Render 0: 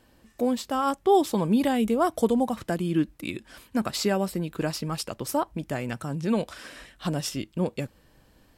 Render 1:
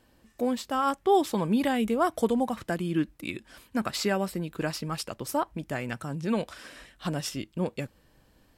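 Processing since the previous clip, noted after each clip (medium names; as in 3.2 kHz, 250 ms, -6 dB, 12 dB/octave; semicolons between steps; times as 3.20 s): dynamic bell 1.8 kHz, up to +5 dB, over -40 dBFS, Q 0.86; trim -3 dB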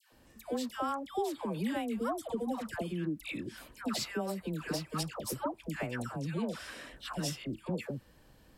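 compression 4:1, threshold -34 dBFS, peak gain reduction 14.5 dB; phase dispersion lows, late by 126 ms, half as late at 980 Hz; trim +1 dB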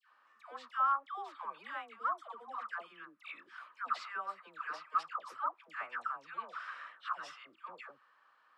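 ladder band-pass 1.3 kHz, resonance 75%; trim +9.5 dB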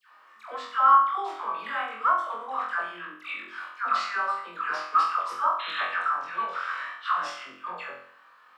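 painted sound noise, 5.59–5.81 s, 1.1–4.2 kHz -47 dBFS; on a send: flutter echo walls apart 3.9 m, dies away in 0.56 s; on the sum: trim +9 dB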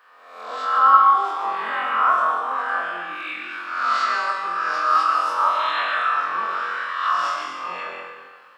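reverse spectral sustain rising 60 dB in 0.85 s; algorithmic reverb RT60 1.4 s, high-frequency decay 0.95×, pre-delay 75 ms, DRR 2 dB; trim +1.5 dB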